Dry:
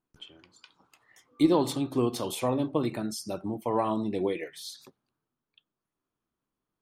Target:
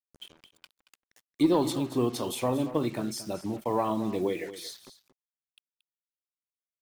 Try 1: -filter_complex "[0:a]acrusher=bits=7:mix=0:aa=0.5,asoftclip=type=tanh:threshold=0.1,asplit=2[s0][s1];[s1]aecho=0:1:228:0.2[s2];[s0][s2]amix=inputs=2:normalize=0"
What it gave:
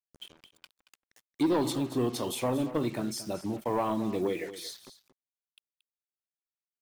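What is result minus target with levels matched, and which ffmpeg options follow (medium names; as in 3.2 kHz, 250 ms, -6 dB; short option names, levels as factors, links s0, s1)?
saturation: distortion +13 dB
-filter_complex "[0:a]acrusher=bits=7:mix=0:aa=0.5,asoftclip=type=tanh:threshold=0.299,asplit=2[s0][s1];[s1]aecho=0:1:228:0.2[s2];[s0][s2]amix=inputs=2:normalize=0"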